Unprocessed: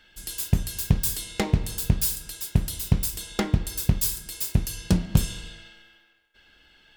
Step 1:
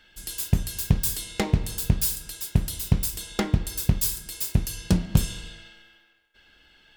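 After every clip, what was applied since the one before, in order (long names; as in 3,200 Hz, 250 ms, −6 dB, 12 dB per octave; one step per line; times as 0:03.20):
no processing that can be heard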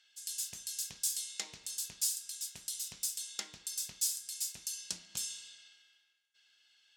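resonant band-pass 6,600 Hz, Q 1.6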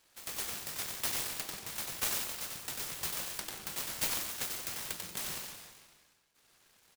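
repeating echo 92 ms, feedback 49%, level −9 dB
convolution reverb RT60 0.80 s, pre-delay 94 ms, DRR 1.5 dB
short delay modulated by noise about 2,300 Hz, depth 0.12 ms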